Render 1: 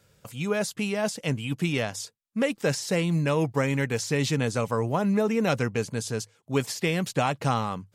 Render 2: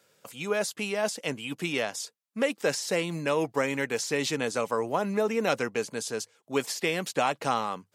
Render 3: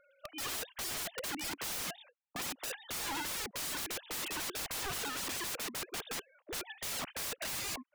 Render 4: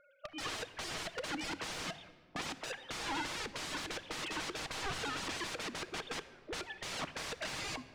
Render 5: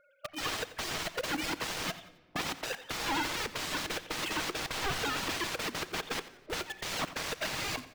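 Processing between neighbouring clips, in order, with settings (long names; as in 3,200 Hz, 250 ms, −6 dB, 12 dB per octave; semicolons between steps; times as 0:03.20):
high-pass filter 300 Hz 12 dB per octave
three sine waves on the formant tracks; brickwall limiter −21 dBFS, peak gain reduction 10.5 dB; wrap-around overflow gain 37.5 dB; level +4 dB
high-frequency loss of the air 92 metres; rectangular room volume 2,600 cubic metres, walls mixed, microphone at 0.56 metres; level +1.5 dB
in parallel at −10 dB: log-companded quantiser 2 bits; on the sum: repeating echo 89 ms, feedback 38%, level −16 dB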